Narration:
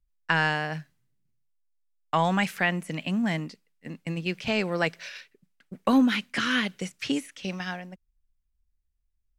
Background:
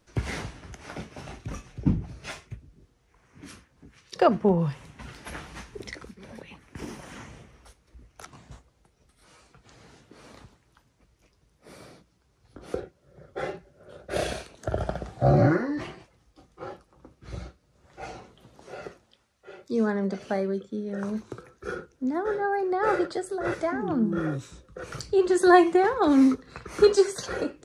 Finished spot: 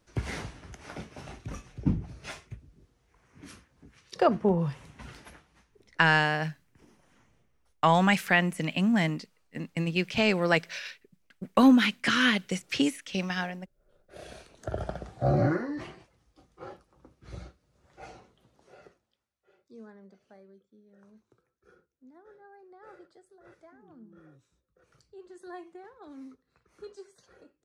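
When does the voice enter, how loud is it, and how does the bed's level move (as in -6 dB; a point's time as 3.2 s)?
5.70 s, +2.0 dB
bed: 5.19 s -3 dB
5.44 s -21.5 dB
14.12 s -21.5 dB
14.55 s -5 dB
17.79 s -5 dB
20.22 s -27 dB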